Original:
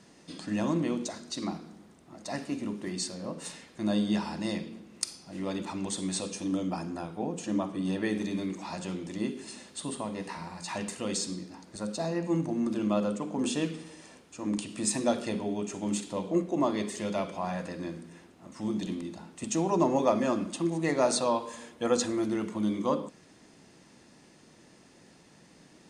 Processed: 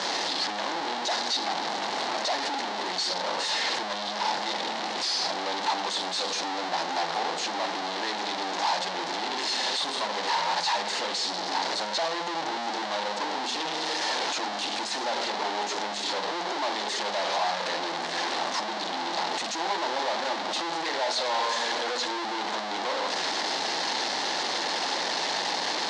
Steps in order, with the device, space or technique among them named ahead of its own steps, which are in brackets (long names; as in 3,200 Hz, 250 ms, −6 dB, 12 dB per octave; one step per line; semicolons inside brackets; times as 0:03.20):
home computer beeper (sign of each sample alone; loudspeaker in its box 630–5,500 Hz, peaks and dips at 840 Hz +7 dB, 1,300 Hz −4 dB, 2,500 Hz −5 dB, 4,100 Hz +5 dB)
level +7 dB